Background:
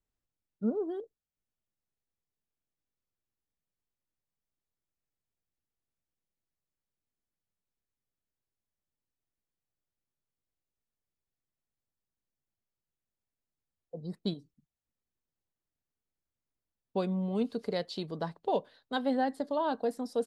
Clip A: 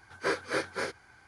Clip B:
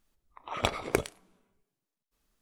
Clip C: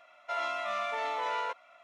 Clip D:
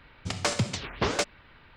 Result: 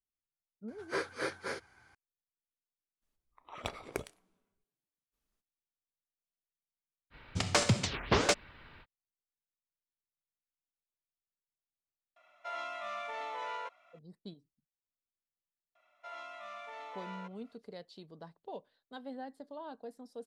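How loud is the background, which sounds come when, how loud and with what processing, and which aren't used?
background −14.5 dB
0:00.68: mix in A −5.5 dB
0:03.01: mix in B −11 dB, fades 0.02 s
0:07.10: mix in D −0.5 dB, fades 0.05 s
0:12.16: mix in C −7 dB
0:15.75: mix in C −13 dB

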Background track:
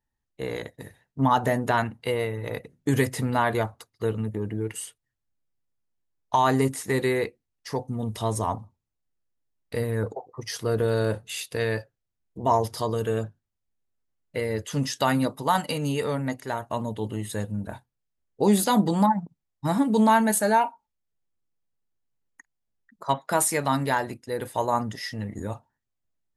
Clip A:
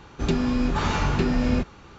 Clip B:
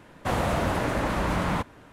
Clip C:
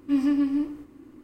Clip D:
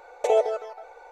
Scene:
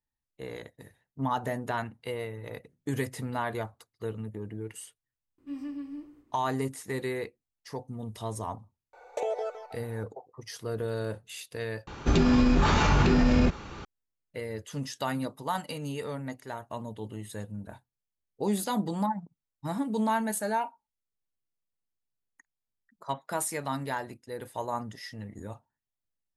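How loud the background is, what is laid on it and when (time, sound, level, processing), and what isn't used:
background track −8.5 dB
0:05.38: mix in C −15 dB
0:08.93: mix in D −5 dB + downward compressor, threshold −21 dBFS
0:11.87: overwrite with A −12.5 dB + boost into a limiter +17.5 dB
not used: B

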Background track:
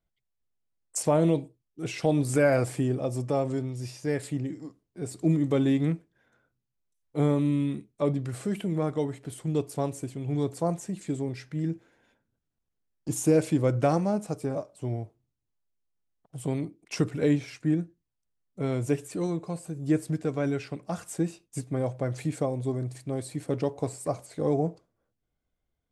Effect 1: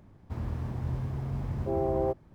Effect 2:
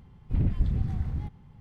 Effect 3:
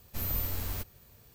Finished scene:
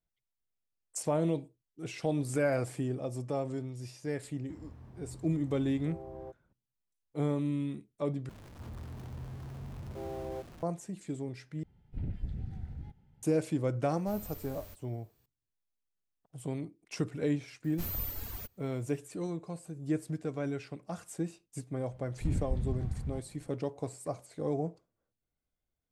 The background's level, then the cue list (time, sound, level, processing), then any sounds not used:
background track −7 dB
0:04.19: mix in 1 −17 dB
0:08.29: overwrite with 1 −13 dB + converter with a step at zero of −33 dBFS
0:11.63: overwrite with 2 −11.5 dB + Butterworth band-reject 1,100 Hz, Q 3.9
0:13.92: mix in 3 −14.5 dB
0:17.64: mix in 3 −3 dB + reverb reduction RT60 1.9 s
0:21.91: mix in 2 −7 dB

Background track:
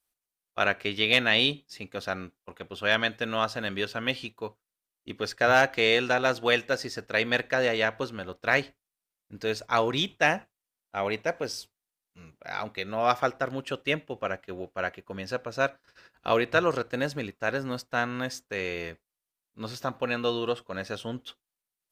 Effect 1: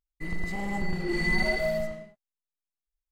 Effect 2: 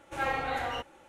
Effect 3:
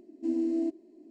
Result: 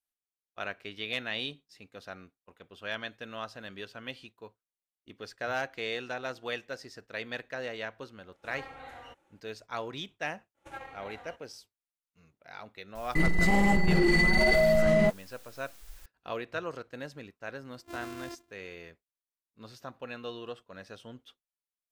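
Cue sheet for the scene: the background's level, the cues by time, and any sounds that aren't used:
background track −12 dB
0:08.32: mix in 2 −14.5 dB
0:10.54: mix in 2 −17.5 dB, fades 0.05 s + transient designer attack +10 dB, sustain +1 dB
0:12.95: mix in 1 −0.5 dB + envelope flattener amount 100%
0:17.65: mix in 3 −14 dB + samples sorted by size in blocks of 128 samples

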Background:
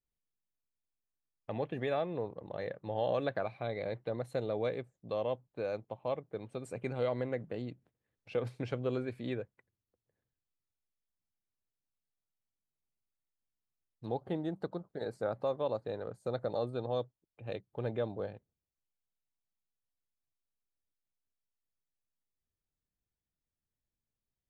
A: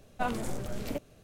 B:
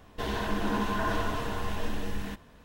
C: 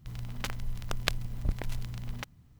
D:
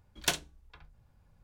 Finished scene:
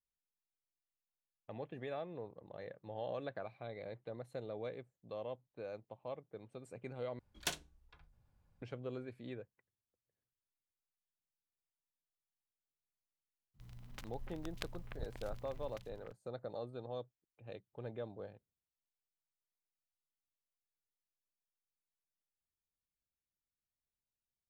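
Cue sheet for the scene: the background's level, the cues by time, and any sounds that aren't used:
background −9.5 dB
0:07.19: overwrite with D −9 dB
0:13.54: mix in C −15.5 dB + delay that swaps between a low-pass and a high-pass 297 ms, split 2,500 Hz, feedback 57%, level −5 dB
not used: A, B

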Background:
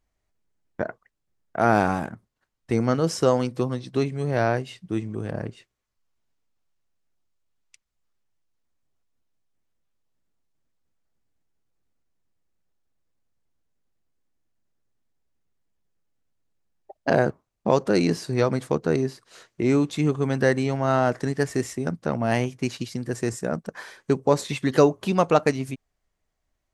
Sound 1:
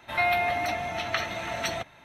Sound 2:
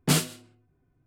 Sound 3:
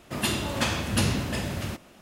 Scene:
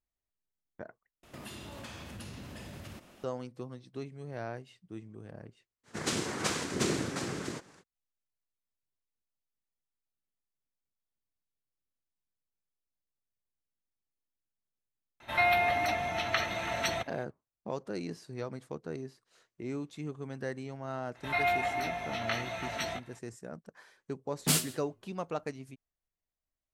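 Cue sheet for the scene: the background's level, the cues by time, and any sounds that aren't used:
background −17 dB
0:01.23: overwrite with 3 −4.5 dB + downward compressor, threshold −38 dBFS
0:05.83: mix in 3 −5 dB, fades 0.05 s + cochlear-implant simulation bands 3
0:15.20: mix in 1 −1.5 dB
0:21.15: mix in 1 −2.5 dB + chorus effect 1.4 Hz, delay 16.5 ms, depth 3.4 ms
0:24.39: mix in 2 −7.5 dB + high-shelf EQ 3,500 Hz +8 dB

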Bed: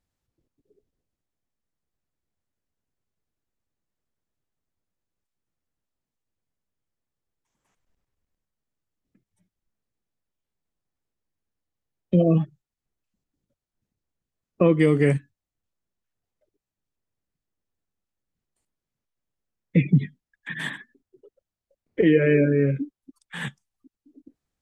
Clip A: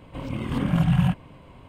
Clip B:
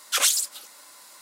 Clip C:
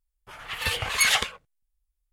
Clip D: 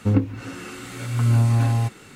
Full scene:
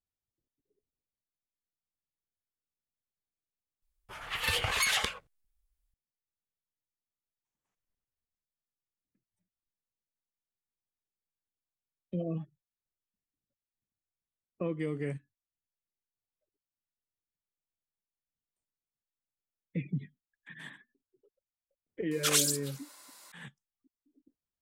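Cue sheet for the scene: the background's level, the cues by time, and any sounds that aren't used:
bed −16 dB
0:03.82: mix in C −1.5 dB + downward compressor 10 to 1, threshold −22 dBFS
0:22.11: mix in B −6 dB
not used: A, D

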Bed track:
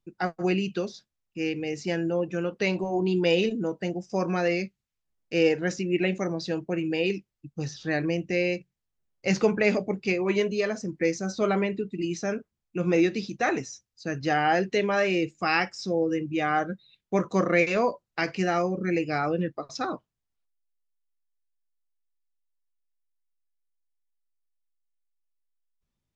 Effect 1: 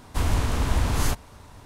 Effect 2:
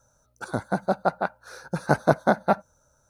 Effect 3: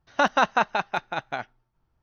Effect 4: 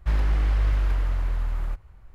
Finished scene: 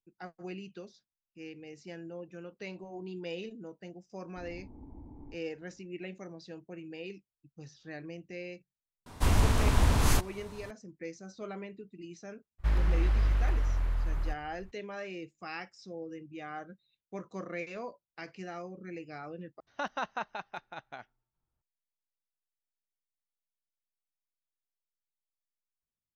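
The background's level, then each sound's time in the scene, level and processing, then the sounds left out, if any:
bed track −16.5 dB
0:04.21: mix in 1 −13 dB + formant resonators in series u
0:09.06: mix in 1 −1.5 dB
0:12.58: mix in 4 −4.5 dB, fades 0.02 s
0:19.60: overwrite with 3 −14.5 dB
not used: 2

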